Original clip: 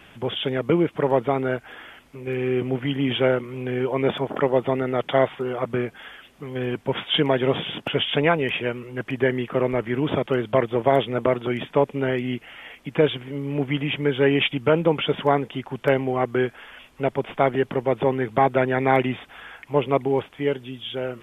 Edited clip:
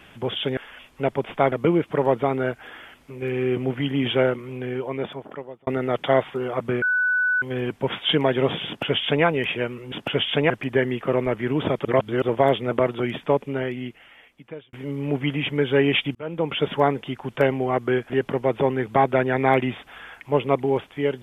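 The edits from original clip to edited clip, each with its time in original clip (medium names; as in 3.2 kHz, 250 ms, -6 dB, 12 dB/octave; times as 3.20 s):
3.30–4.72 s: fade out
5.87–6.47 s: bleep 1.49 kHz -18 dBFS
7.72–8.30 s: copy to 8.97 s
10.32–10.69 s: reverse
11.61–13.20 s: fade out
14.62–15.10 s: fade in
16.57–17.52 s: move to 0.57 s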